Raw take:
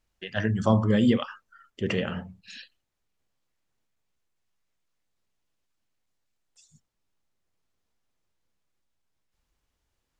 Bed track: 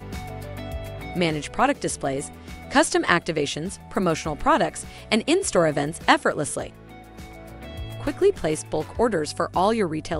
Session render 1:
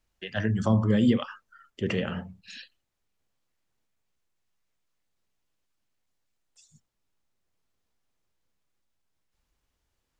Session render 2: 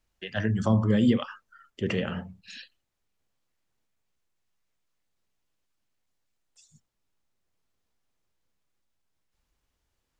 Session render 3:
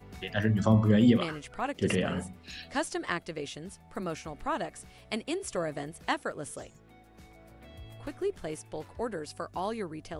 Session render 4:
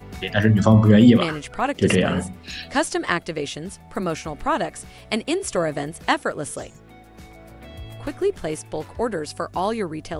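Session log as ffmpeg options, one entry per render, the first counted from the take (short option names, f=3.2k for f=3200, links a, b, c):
-filter_complex "[0:a]acrossover=split=320[a][b];[b]acompressor=threshold=-28dB:ratio=3[c];[a][c]amix=inputs=2:normalize=0"
-af anull
-filter_complex "[1:a]volume=-13dB[a];[0:a][a]amix=inputs=2:normalize=0"
-af "volume=10dB,alimiter=limit=-3dB:level=0:latency=1"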